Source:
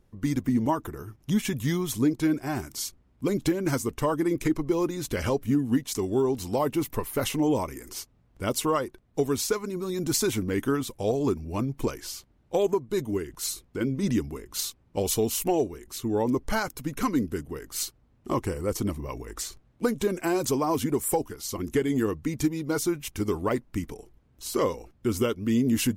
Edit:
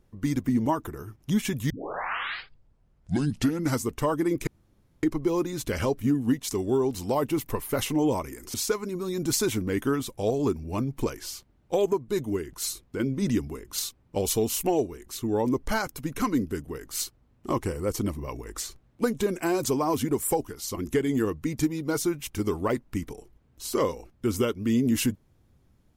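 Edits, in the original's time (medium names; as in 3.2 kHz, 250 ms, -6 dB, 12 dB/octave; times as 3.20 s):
1.70 s: tape start 2.14 s
4.47 s: insert room tone 0.56 s
7.98–9.35 s: delete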